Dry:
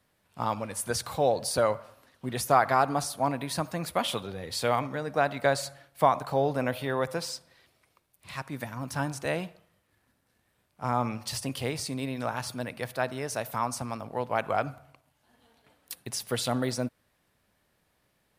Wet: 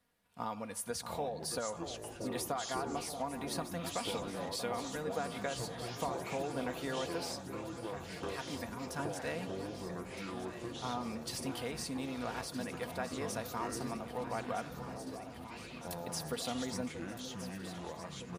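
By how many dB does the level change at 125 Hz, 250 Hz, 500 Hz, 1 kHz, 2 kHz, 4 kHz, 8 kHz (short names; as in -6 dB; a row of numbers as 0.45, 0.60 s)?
-9.0, -5.0, -9.5, -11.0, -9.0, -6.0, -6.0 dB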